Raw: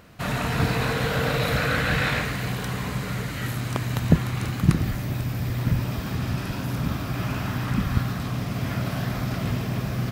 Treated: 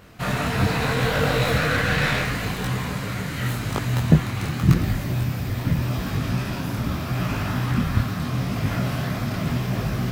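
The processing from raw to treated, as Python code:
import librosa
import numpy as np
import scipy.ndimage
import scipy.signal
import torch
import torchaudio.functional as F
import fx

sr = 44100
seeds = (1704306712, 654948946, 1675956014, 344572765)

y = fx.tracing_dist(x, sr, depth_ms=0.091)
y = fx.detune_double(y, sr, cents=28)
y = y * librosa.db_to_amplitude(6.0)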